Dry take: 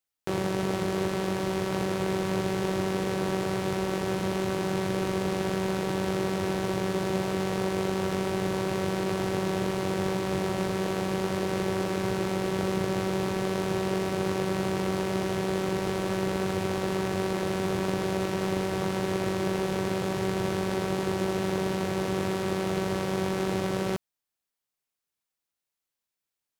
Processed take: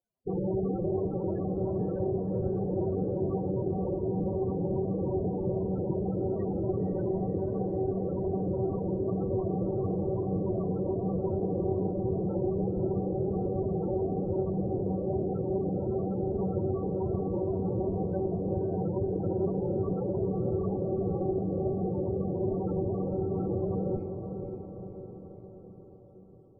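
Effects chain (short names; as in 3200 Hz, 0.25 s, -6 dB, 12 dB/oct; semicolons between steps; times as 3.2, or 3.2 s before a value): moving spectral ripple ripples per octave 1.4, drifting +2.6 Hz, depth 10 dB; notches 50/100/150 Hz; in parallel at -5 dB: sample-and-hold 19×; on the sum: one-sided clip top -30 dBFS; loudest bins only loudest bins 16; on a send: diffused feedback echo 0.527 s, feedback 58%, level -6.5 dB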